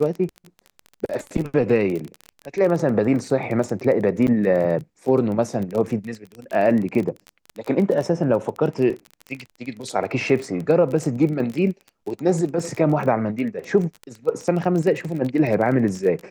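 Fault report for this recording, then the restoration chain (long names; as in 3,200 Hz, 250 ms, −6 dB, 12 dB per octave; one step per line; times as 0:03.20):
surface crackle 21 per second −26 dBFS
0:04.27–0:04.28: drop-out 8 ms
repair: click removal
repair the gap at 0:04.27, 8 ms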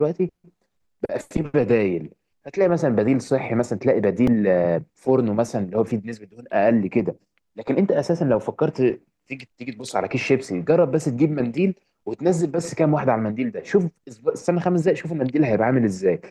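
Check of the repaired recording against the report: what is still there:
none of them is left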